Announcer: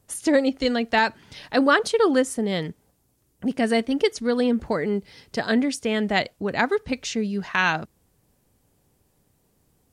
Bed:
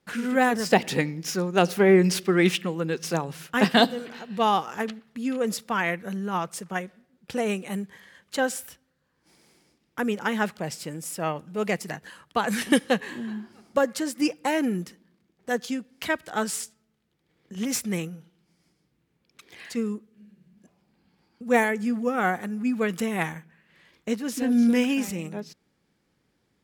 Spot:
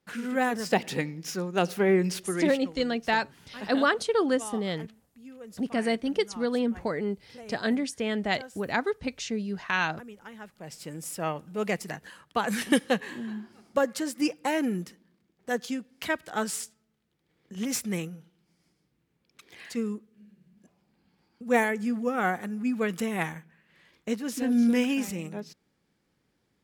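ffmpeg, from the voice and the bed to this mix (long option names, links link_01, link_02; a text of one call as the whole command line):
ffmpeg -i stem1.wav -i stem2.wav -filter_complex "[0:a]adelay=2150,volume=-5.5dB[link_01];[1:a]volume=11.5dB,afade=type=out:start_time=1.88:duration=0.95:silence=0.199526,afade=type=in:start_time=10.53:duration=0.47:silence=0.149624[link_02];[link_01][link_02]amix=inputs=2:normalize=0" out.wav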